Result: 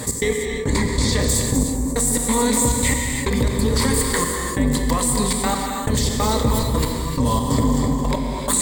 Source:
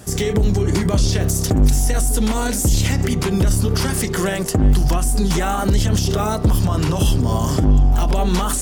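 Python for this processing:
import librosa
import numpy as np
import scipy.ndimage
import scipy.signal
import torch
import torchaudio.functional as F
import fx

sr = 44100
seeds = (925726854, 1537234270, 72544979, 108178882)

y = fx.ripple_eq(x, sr, per_octave=1.0, db=13)
y = y + 10.0 ** (-6.5 / 20.0) * np.pad(y, (int(257 * sr / 1000.0), 0))[:len(y)]
y = fx.step_gate(y, sr, bpm=138, pattern='x.x...xx.xxx', floor_db=-60.0, edge_ms=4.5)
y = fx.low_shelf(y, sr, hz=120.0, db=-8.0)
y = fx.rev_gated(y, sr, seeds[0], gate_ms=360, shape='flat', drr_db=5.0)
y = fx.env_flatten(y, sr, amount_pct=50)
y = F.gain(torch.from_numpy(y), -3.0).numpy()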